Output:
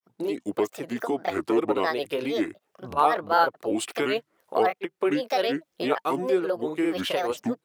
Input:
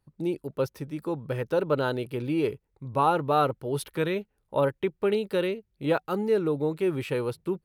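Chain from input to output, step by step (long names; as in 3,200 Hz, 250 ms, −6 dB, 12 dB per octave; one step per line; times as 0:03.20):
camcorder AGC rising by 30 dB per second
high-pass filter 430 Hz 12 dB per octave
granular cloud 162 ms, grains 15 per second, spray 33 ms, pitch spread up and down by 7 semitones
level +5.5 dB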